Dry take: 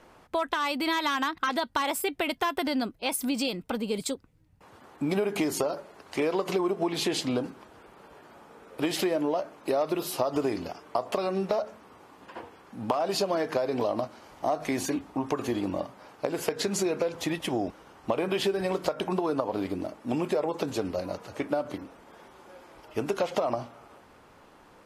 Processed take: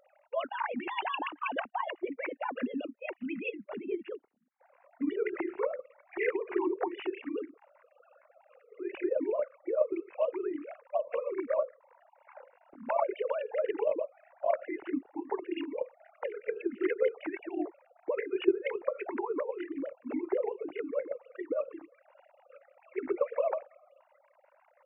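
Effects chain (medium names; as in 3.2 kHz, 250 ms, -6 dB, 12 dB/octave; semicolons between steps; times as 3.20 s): formants replaced by sine waves; formant shift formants -3 st; trim -1.5 dB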